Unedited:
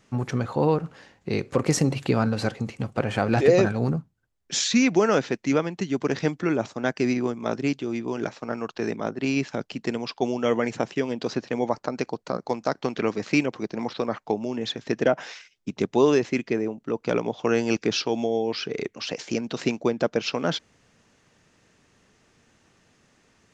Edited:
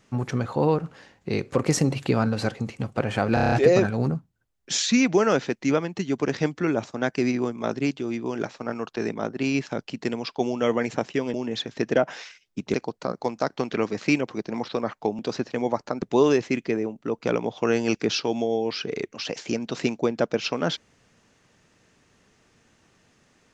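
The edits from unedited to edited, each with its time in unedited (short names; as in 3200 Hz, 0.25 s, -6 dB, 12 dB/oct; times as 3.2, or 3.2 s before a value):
3.34 stutter 0.03 s, 7 plays
11.16–11.99 swap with 14.44–15.84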